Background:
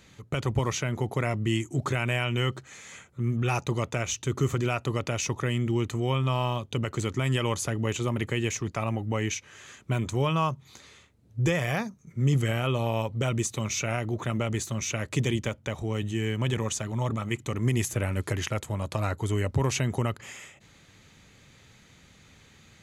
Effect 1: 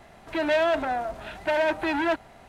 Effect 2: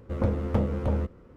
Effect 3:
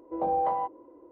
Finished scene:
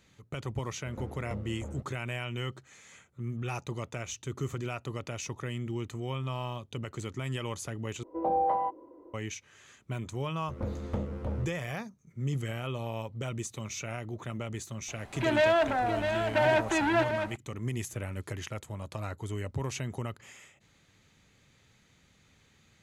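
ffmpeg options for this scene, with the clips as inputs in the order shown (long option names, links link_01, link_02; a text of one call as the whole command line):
ffmpeg -i bed.wav -i cue0.wav -i cue1.wav -i cue2.wav -filter_complex "[2:a]asplit=2[link_01][link_02];[0:a]volume=-8.5dB[link_03];[link_02]dynaudnorm=framelen=150:gausssize=3:maxgain=4.5dB[link_04];[1:a]aecho=1:1:655:0.447[link_05];[link_03]asplit=2[link_06][link_07];[link_06]atrim=end=8.034[link_08];[3:a]atrim=end=1.11,asetpts=PTS-STARTPTS,volume=-0.5dB[link_09];[link_07]atrim=start=9.136[link_10];[link_01]atrim=end=1.36,asetpts=PTS-STARTPTS,volume=-15.5dB,afade=type=in:duration=0.004:curve=hsin,afade=type=out:start_time=1.356:duration=0.004:curve=hsin,adelay=760[link_11];[link_04]atrim=end=1.36,asetpts=PTS-STARTPTS,volume=-12.5dB,afade=type=in:duration=0.004:curve=hsin,afade=type=out:start_time=1.356:duration=0.004:curve=hsin,adelay=10390[link_12];[link_05]atrim=end=2.48,asetpts=PTS-STARTPTS,volume=-1.5dB,afade=type=in:duration=0.004:curve=hsin,afade=type=out:start_time=2.476:duration=0.004:curve=hsin,adelay=14880[link_13];[link_08][link_09]acrossfade=duration=0.004:curve1=hsin:curve2=hsin[link_14];[link_14][link_10]acrossfade=duration=0.004:curve1=hsin:curve2=hsin[link_15];[link_15][link_11][link_12][link_13]amix=inputs=4:normalize=0" out.wav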